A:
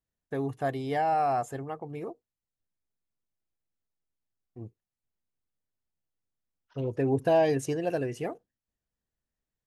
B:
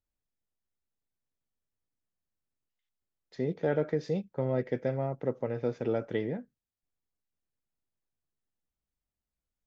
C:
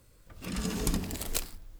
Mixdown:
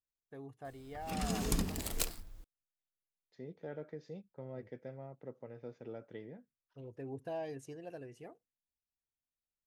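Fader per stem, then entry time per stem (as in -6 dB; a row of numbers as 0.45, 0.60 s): -17.5, -16.0, -3.0 dB; 0.00, 0.00, 0.65 s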